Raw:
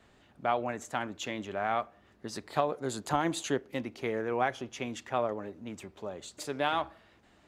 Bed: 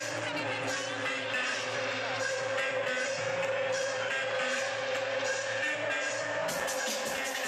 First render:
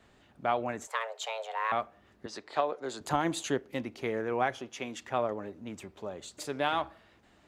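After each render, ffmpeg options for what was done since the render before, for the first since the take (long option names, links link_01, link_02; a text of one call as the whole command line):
ffmpeg -i in.wav -filter_complex "[0:a]asettb=1/sr,asplit=3[link_01][link_02][link_03];[link_01]atrim=end=0.874[link_04];[link_02]atrim=start=0.87:end=1.72,asetpts=PTS-STARTPTS,afade=type=in:duration=0.004:curve=qsin,afade=type=out:start_time=0.846:duration=0.004:curve=qsin,afreqshift=330[link_05];[link_03]atrim=start=1.716[link_06];[link_04][link_05]acrossfade=duration=0.004:curve1=hsin:curve2=qsin[link_07];[link_07][link_06]acrossfade=duration=0.004:curve1=qsin:curve2=hsin,asettb=1/sr,asplit=3[link_08][link_09][link_10];[link_08]atrim=end=2.264[link_11];[link_09]atrim=start=2.26:end=3.01,asetpts=PTS-STARTPTS,afade=type=in:duration=0.004:curve=qsin,afade=type=out:start_time=0.746:duration=0.004:curve=qsin,acrossover=split=300 7200:gain=0.178 1 0.0708[link_12][link_13][link_14];[link_12][link_13][link_14]amix=inputs=3:normalize=0[link_15];[link_10]atrim=start=3.006[link_16];[link_11][link_15]acrossfade=duration=0.004:curve1=hsin:curve2=qsin[link_17];[link_17][link_16]acrossfade=duration=0.004:curve1=qsin:curve2=hsin,asettb=1/sr,asplit=3[link_18][link_19][link_20];[link_18]atrim=end=4.584[link_21];[link_19]atrim=start=4.58:end=5.02,asetpts=PTS-STARTPTS,afade=type=in:duration=0.004:curve=qsin,afade=type=out:start_time=0.436:duration=0.004:curve=qsin,highpass=frequency=250:poles=1[link_22];[link_20]atrim=start=5.016[link_23];[link_21][link_22]acrossfade=duration=0.004:curve1=hsin:curve2=qsin[link_24];[link_24][link_23]acrossfade=duration=0.004:curve1=qsin:curve2=hsin" out.wav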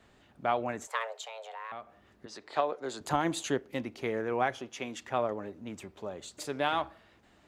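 ffmpeg -i in.wav -filter_complex "[0:a]asettb=1/sr,asplit=3[link_01][link_02][link_03];[link_01]atrim=end=1.214[link_04];[link_02]atrim=start=1.21:end=2.42,asetpts=PTS-STARTPTS,afade=type=in:duration=0.004:curve=qsin,afade=type=out:start_time=1.206:duration=0.004:curve=qsin,acompressor=threshold=-43dB:ratio=2.5:attack=3.2:release=140:knee=1:detection=peak[link_05];[link_03]atrim=start=2.416[link_06];[link_04][link_05]acrossfade=duration=0.004:curve1=hsin:curve2=qsin[link_07];[link_07][link_06]acrossfade=duration=0.004:curve1=qsin:curve2=hsin" out.wav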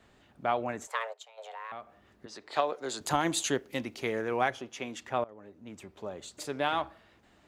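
ffmpeg -i in.wav -filter_complex "[0:a]asplit=3[link_01][link_02][link_03];[link_01]afade=type=out:start_time=0.96:duration=0.02[link_04];[link_02]agate=range=-13dB:threshold=-42dB:ratio=16:release=100:detection=peak,afade=type=in:start_time=0.96:duration=0.02,afade=type=out:start_time=1.37:duration=0.02[link_05];[link_03]afade=type=in:start_time=1.37:duration=0.02[link_06];[link_04][link_05][link_06]amix=inputs=3:normalize=0,asettb=1/sr,asplit=3[link_07][link_08][link_09];[link_07]atrim=end=2.514[link_10];[link_08]atrim=start=2.51:end=4.5,asetpts=PTS-STARTPTS,afade=type=in:duration=0.004:curve=qsin,afade=type=out:start_time=1.986:duration=0.004:curve=qsin,highshelf=frequency=2600:gain=8[link_11];[link_09]atrim=start=4.496[link_12];[link_10][link_11]acrossfade=duration=0.004:curve1=hsin:curve2=qsin[link_13];[link_13][link_12]acrossfade=duration=0.004:curve1=qsin:curve2=hsin,asplit=2[link_14][link_15];[link_14]atrim=end=5.24,asetpts=PTS-STARTPTS,afade=type=out:start_time=5.236:duration=0.004:curve=hsin:silence=0.0794328[link_16];[link_15]atrim=start=5.24,asetpts=PTS-STARTPTS,afade=type=in:duration=0.81:silence=0.0794328[link_17];[link_16][link_17]concat=n=2:v=0:a=1" out.wav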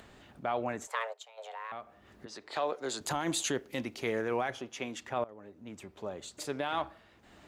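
ffmpeg -i in.wav -af "acompressor=mode=upward:threshold=-48dB:ratio=2.5,alimiter=limit=-21.5dB:level=0:latency=1:release=15" out.wav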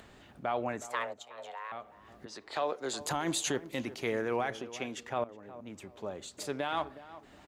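ffmpeg -i in.wav -filter_complex "[0:a]asplit=2[link_01][link_02];[link_02]adelay=366,lowpass=frequency=1200:poles=1,volume=-14.5dB,asplit=2[link_03][link_04];[link_04]adelay=366,lowpass=frequency=1200:poles=1,volume=0.27,asplit=2[link_05][link_06];[link_06]adelay=366,lowpass=frequency=1200:poles=1,volume=0.27[link_07];[link_01][link_03][link_05][link_07]amix=inputs=4:normalize=0" out.wav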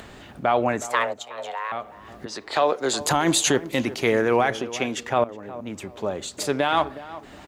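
ffmpeg -i in.wav -af "volume=12dB" out.wav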